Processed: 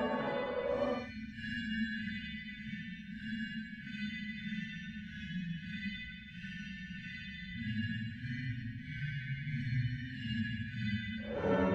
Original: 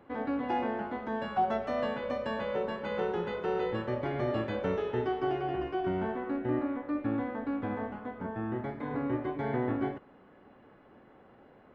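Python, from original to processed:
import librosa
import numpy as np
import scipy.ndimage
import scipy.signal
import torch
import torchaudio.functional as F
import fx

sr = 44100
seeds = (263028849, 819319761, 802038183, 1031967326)

y = fx.spec_erase(x, sr, start_s=2.13, length_s=2.49, low_hz=240.0, high_hz=1500.0)
y = fx.paulstretch(y, sr, seeds[0], factor=4.2, window_s=0.1, from_s=1.91)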